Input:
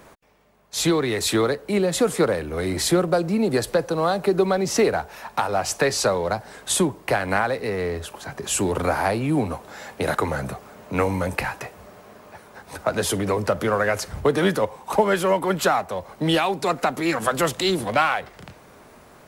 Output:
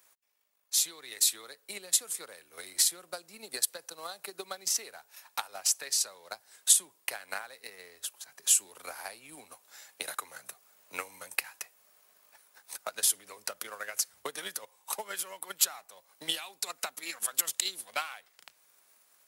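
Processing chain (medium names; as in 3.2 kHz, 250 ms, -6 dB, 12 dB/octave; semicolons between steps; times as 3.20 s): differentiator; transient shaper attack +12 dB, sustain -3 dB; trim -6.5 dB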